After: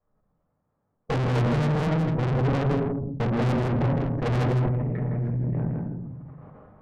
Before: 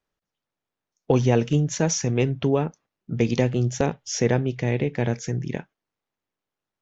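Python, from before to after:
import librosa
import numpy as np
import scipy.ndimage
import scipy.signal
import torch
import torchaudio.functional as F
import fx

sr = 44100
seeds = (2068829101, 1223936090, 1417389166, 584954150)

y = fx.dynamic_eq(x, sr, hz=530.0, q=1.2, threshold_db=-34.0, ratio=4.0, max_db=-5)
y = fx.step_gate(y, sr, bpm=122, pattern='xxx.x.xxxx', floor_db=-60.0, edge_ms=4.5, at=(1.87, 4.2), fade=0.02)
y = fx.level_steps(y, sr, step_db=22)
y = scipy.signal.sosfilt(scipy.signal.bessel(4, 890.0, 'lowpass', norm='mag', fs=sr, output='sos'), y)
y = fx.room_shoebox(y, sr, seeds[0], volume_m3=670.0, walls='furnished', distance_m=5.9)
y = fx.tube_stage(y, sr, drive_db=32.0, bias=0.55)
y = y + 10.0 ** (-6.0 / 20.0) * np.pad(y, (int(162 * sr / 1000.0), 0))[:len(y)]
y = fx.sustainer(y, sr, db_per_s=24.0)
y = y * 10.0 ** (8.5 / 20.0)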